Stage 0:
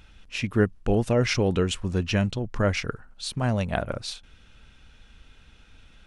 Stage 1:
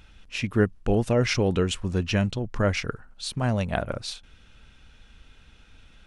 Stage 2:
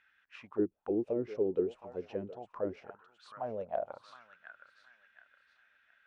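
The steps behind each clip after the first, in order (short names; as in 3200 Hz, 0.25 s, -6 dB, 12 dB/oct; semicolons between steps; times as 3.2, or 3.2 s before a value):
nothing audible
thinning echo 0.717 s, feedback 36%, high-pass 230 Hz, level -14 dB; auto-wah 330–1800 Hz, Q 6.2, down, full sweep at -17.5 dBFS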